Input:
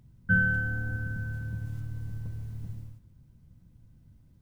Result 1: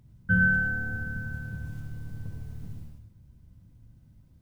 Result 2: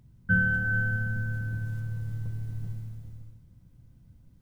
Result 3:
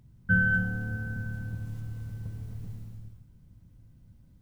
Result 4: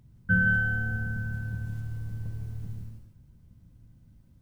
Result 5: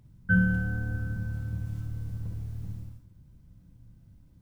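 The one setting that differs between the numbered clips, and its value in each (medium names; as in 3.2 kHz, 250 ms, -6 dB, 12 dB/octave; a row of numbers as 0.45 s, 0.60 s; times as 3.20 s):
gated-style reverb, gate: 130 ms, 460 ms, 310 ms, 200 ms, 80 ms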